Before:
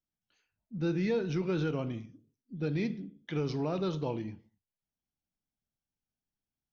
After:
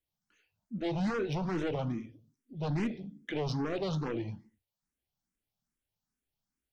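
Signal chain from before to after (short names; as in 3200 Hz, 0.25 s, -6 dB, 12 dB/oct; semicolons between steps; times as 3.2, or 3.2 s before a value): sine folder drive 7 dB, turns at -21 dBFS; endless phaser +2.4 Hz; gain -5 dB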